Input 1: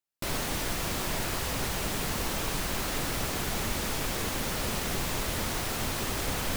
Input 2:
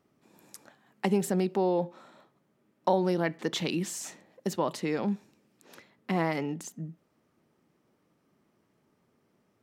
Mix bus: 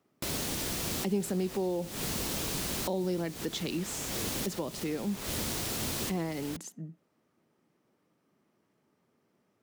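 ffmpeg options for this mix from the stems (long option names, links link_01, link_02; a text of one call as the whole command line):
ffmpeg -i stem1.wav -i stem2.wav -filter_complex "[0:a]volume=0.5dB[link_01];[1:a]volume=-2dB,asplit=2[link_02][link_03];[link_03]apad=whole_len=289507[link_04];[link_01][link_04]sidechaincompress=threshold=-42dB:ratio=8:attack=12:release=181[link_05];[link_05][link_02]amix=inputs=2:normalize=0,highpass=frequency=110:poles=1,acrossover=split=490|3000[link_06][link_07][link_08];[link_07]acompressor=threshold=-46dB:ratio=3[link_09];[link_06][link_09][link_08]amix=inputs=3:normalize=0" out.wav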